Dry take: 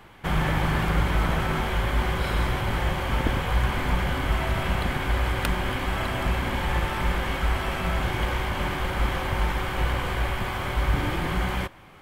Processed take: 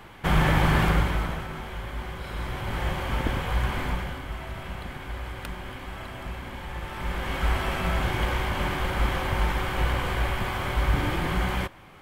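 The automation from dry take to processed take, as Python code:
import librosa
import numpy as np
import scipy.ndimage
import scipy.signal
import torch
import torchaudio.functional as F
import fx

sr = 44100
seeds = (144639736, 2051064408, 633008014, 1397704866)

y = fx.gain(x, sr, db=fx.line((0.86, 3.0), (1.49, -10.0), (2.24, -10.0), (2.86, -2.5), (3.83, -2.5), (4.25, -10.5), (6.75, -10.5), (7.47, 0.0)))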